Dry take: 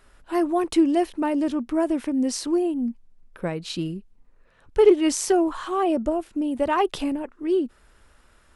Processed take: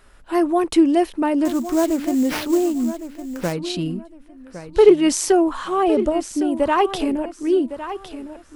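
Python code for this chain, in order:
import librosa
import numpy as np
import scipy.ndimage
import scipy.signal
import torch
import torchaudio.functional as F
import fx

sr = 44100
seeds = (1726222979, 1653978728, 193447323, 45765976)

p1 = x + fx.echo_feedback(x, sr, ms=1109, feedback_pct=24, wet_db=-12, dry=0)
p2 = fx.sample_hold(p1, sr, seeds[0], rate_hz=7500.0, jitter_pct=20, at=(1.45, 3.53))
y = F.gain(torch.from_numpy(p2), 4.0).numpy()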